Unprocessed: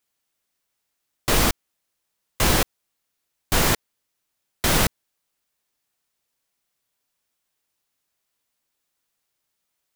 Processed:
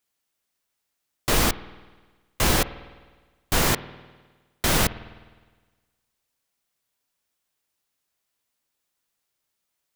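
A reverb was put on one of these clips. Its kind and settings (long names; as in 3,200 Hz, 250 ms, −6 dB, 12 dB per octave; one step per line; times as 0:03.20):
spring reverb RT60 1.4 s, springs 51 ms, chirp 65 ms, DRR 15.5 dB
level −1.5 dB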